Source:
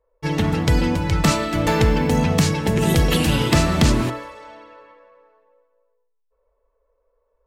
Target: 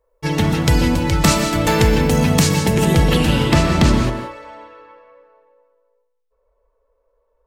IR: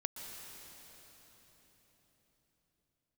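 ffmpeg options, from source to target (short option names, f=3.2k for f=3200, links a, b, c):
-filter_complex "[0:a]asetnsamples=n=441:p=0,asendcmd='2.85 highshelf g -7',highshelf=f=5.5k:g=6.5[a];[1:a]atrim=start_sample=2205,afade=t=out:st=0.24:d=0.01,atrim=end_sample=11025[b];[a][b]afir=irnorm=-1:irlink=0,volume=4.5dB"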